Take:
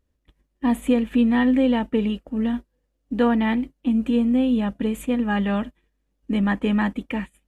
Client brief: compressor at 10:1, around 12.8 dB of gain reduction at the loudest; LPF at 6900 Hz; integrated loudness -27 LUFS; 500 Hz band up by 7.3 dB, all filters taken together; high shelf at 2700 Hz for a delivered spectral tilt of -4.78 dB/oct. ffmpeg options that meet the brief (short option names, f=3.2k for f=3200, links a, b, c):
-af "lowpass=6.9k,equalizer=f=500:t=o:g=8,highshelf=f=2.7k:g=-5,acompressor=threshold=-23dB:ratio=10,volume=1dB"